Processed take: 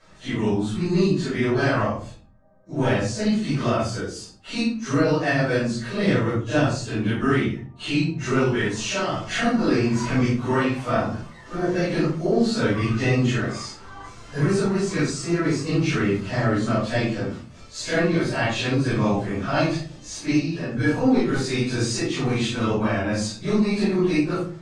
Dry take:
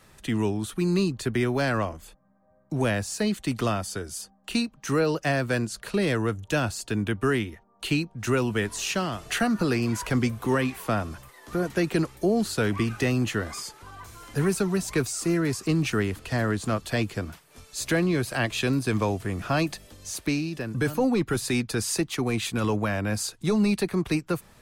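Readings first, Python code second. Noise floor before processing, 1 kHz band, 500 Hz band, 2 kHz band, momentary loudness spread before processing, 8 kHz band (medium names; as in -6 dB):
-59 dBFS, +4.0 dB, +3.5 dB, +3.5 dB, 9 LU, -1.5 dB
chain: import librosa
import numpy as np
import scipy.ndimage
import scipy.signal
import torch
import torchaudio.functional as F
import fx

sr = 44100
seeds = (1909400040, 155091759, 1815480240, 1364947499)

p1 = fx.phase_scramble(x, sr, seeds[0], window_ms=100)
p2 = scipy.signal.sosfilt(scipy.signal.butter(4, 7300.0, 'lowpass', fs=sr, output='sos'), p1)
p3 = fx.low_shelf(p2, sr, hz=110.0, db=-6.0)
p4 = 10.0 ** (-20.0 / 20.0) * np.tanh(p3 / 10.0 ** (-20.0 / 20.0))
p5 = p3 + F.gain(torch.from_numpy(p4), -10.0).numpy()
p6 = fx.room_shoebox(p5, sr, seeds[1], volume_m3=310.0, walls='furnished', distance_m=5.4)
y = F.gain(torch.from_numpy(p6), -7.5).numpy()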